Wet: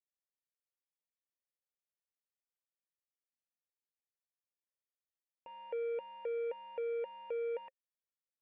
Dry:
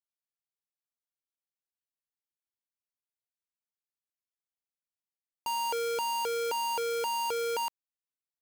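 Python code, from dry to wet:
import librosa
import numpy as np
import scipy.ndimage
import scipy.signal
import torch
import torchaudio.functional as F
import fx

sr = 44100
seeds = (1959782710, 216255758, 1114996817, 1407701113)

y = fx.formant_cascade(x, sr, vowel='e')
y = F.gain(torch.from_numpy(y), 3.0).numpy()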